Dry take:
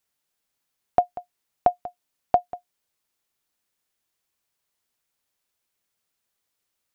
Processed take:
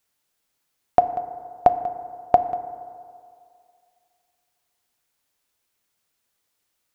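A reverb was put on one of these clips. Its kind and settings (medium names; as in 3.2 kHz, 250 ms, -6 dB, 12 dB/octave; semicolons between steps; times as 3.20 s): FDN reverb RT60 2.3 s, low-frequency decay 0.8×, high-frequency decay 0.3×, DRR 10.5 dB; trim +4 dB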